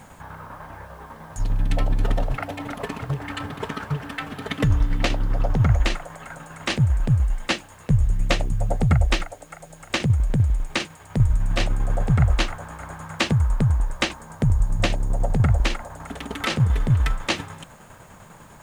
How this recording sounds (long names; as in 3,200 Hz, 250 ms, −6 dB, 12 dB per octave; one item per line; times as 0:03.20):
tremolo saw down 10 Hz, depth 50%
a quantiser's noise floor 10 bits, dither none